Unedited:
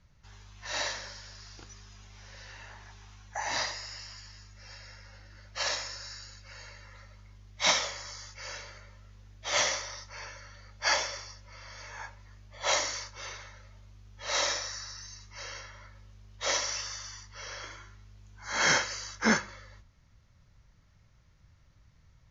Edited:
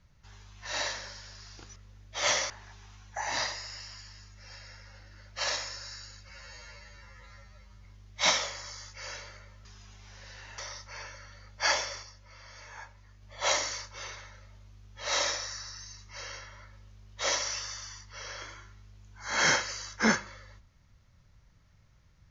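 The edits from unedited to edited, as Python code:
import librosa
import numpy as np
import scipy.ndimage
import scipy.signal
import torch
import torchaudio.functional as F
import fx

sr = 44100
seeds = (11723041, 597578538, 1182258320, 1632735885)

y = fx.edit(x, sr, fx.swap(start_s=1.76, length_s=0.93, other_s=9.06, other_length_s=0.74),
    fx.stretch_span(start_s=6.48, length_s=0.78, factor=2.0),
    fx.clip_gain(start_s=11.25, length_s=1.19, db=-3.5), tone=tone)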